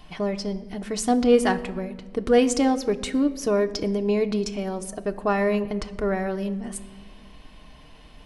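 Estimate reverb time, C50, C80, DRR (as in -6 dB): 1.5 s, 15.5 dB, 17.0 dB, 6.0 dB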